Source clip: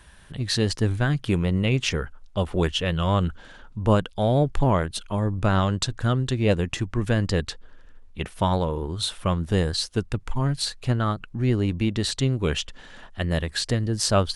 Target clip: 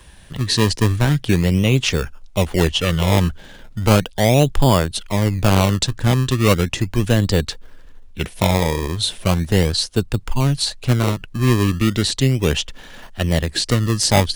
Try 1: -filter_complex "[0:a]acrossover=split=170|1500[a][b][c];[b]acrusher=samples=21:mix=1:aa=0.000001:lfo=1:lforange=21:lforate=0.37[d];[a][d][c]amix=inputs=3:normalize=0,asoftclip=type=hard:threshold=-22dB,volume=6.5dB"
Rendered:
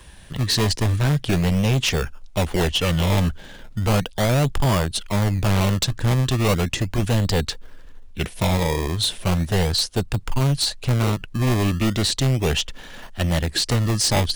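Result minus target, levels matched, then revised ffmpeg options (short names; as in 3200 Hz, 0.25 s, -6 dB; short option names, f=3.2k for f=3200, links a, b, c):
hard clip: distortion +17 dB
-filter_complex "[0:a]acrossover=split=170|1500[a][b][c];[b]acrusher=samples=21:mix=1:aa=0.000001:lfo=1:lforange=21:lforate=0.37[d];[a][d][c]amix=inputs=3:normalize=0,asoftclip=type=hard:threshold=-12dB,volume=6.5dB"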